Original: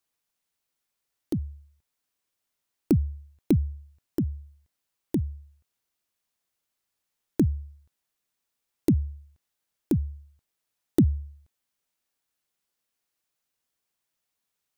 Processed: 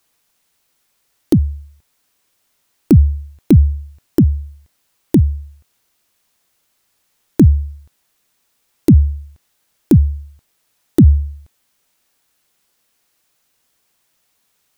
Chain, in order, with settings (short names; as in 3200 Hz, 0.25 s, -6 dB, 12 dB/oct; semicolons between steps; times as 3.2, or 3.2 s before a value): maximiser +18 dB; gain -1 dB